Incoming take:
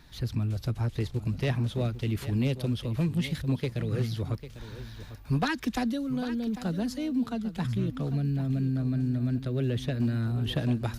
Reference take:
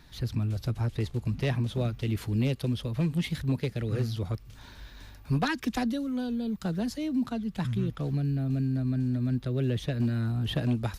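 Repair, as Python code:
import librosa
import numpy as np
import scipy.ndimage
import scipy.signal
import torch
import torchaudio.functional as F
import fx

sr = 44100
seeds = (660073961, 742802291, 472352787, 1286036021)

y = fx.highpass(x, sr, hz=140.0, slope=24, at=(4.58, 4.7), fade=0.02)
y = fx.fix_echo_inverse(y, sr, delay_ms=798, level_db=-13.0)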